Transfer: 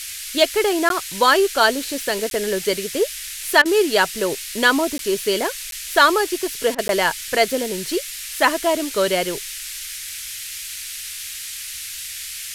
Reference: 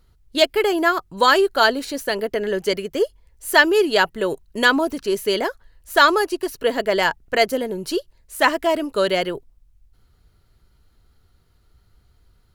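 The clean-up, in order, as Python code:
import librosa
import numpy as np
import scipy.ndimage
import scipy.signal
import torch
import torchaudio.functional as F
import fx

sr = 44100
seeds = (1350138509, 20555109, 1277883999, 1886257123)

y = fx.fix_interpolate(x, sr, at_s=(0.89, 2.3, 4.98, 5.71, 6.88), length_ms=12.0)
y = fx.fix_interpolate(y, sr, at_s=(3.62, 6.75), length_ms=33.0)
y = fx.noise_reduce(y, sr, print_start_s=11.28, print_end_s=11.78, reduce_db=26.0)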